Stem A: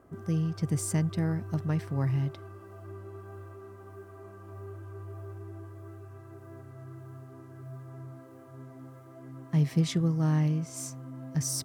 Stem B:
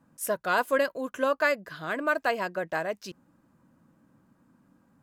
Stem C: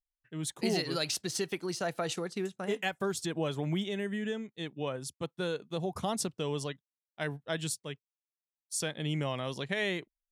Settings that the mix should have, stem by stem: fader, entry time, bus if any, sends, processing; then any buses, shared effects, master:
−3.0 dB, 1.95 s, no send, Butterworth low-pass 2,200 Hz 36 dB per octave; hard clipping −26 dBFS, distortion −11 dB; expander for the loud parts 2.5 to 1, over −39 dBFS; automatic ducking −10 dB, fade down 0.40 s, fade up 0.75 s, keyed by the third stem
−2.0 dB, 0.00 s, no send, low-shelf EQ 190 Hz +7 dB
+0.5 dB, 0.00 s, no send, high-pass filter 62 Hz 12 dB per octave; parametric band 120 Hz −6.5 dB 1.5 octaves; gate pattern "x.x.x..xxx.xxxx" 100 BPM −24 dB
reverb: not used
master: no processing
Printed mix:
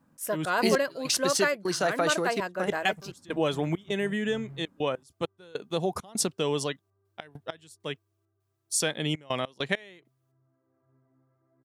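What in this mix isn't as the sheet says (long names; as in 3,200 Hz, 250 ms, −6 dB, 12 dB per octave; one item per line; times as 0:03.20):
stem A: entry 1.95 s → 2.35 s
stem B: missing low-shelf EQ 190 Hz +7 dB
stem C +0.5 dB → +7.5 dB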